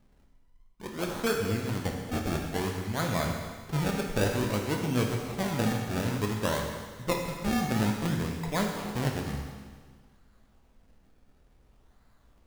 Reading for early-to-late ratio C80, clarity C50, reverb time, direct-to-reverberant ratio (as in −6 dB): 4.5 dB, 3.5 dB, 1.6 s, 1.0 dB